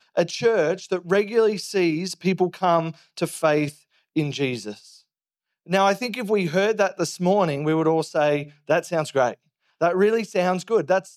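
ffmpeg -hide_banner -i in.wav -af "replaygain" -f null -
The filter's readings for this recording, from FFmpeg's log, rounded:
track_gain = +2.4 dB
track_peak = 0.393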